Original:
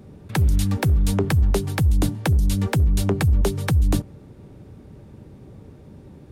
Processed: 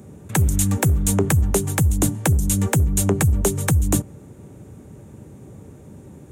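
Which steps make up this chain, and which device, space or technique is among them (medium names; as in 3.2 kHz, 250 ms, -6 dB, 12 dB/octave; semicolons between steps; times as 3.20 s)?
budget condenser microphone (high-pass 69 Hz; resonant high shelf 5.8 kHz +6.5 dB, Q 3); trim +2.5 dB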